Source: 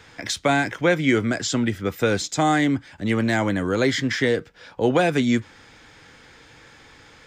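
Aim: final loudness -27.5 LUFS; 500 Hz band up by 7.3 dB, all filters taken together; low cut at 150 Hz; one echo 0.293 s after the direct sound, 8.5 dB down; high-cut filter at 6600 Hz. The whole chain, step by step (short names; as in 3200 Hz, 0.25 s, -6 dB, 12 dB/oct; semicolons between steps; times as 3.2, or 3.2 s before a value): HPF 150 Hz; LPF 6600 Hz; bell 500 Hz +8.5 dB; echo 0.293 s -8.5 dB; gain -9.5 dB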